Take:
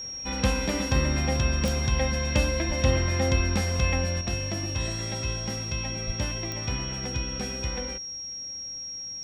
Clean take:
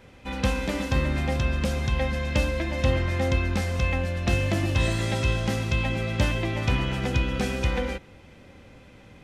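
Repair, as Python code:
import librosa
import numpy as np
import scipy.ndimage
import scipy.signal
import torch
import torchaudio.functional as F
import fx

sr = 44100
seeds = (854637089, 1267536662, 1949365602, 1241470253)

y = fx.fix_declick_ar(x, sr, threshold=10.0)
y = fx.notch(y, sr, hz=5600.0, q=30.0)
y = fx.fix_deplosive(y, sr, at_s=(2.67, 3.36, 6.06))
y = fx.fix_level(y, sr, at_s=4.21, step_db=7.0)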